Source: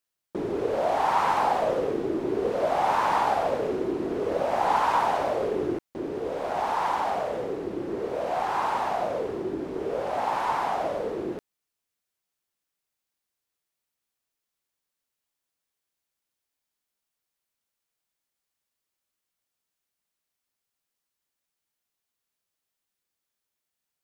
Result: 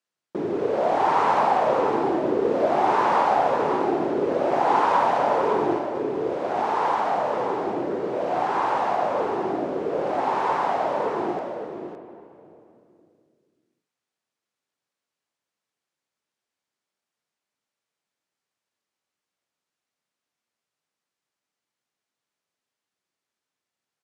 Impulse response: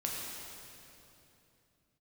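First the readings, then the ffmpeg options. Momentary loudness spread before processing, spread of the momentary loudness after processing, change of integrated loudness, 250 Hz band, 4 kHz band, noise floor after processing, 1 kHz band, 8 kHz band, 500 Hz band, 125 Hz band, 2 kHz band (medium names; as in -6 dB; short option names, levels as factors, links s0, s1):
9 LU, 7 LU, +4.0 dB, +4.0 dB, +0.5 dB, under -85 dBFS, +4.0 dB, no reading, +4.0 dB, +2.0 dB, +3.0 dB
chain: -filter_complex "[0:a]highpass=130,lowpass=7300,aecho=1:1:561:0.447,asplit=2[s0][s1];[1:a]atrim=start_sample=2205,lowpass=2600[s2];[s1][s2]afir=irnorm=-1:irlink=0,volume=0.422[s3];[s0][s3]amix=inputs=2:normalize=0"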